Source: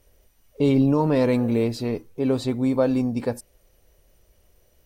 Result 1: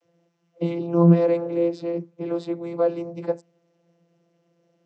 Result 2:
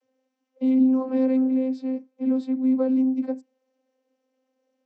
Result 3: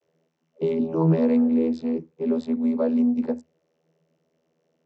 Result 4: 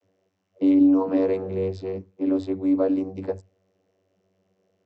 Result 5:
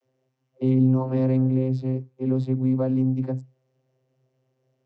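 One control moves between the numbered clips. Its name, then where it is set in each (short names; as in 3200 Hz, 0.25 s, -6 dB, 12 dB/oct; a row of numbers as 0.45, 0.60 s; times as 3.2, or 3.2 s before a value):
vocoder, frequency: 170, 260, 81, 95, 130 Hz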